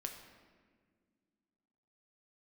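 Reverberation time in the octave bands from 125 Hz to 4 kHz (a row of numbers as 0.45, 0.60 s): 2.4, 2.9, 2.1, 1.5, 1.5, 1.1 s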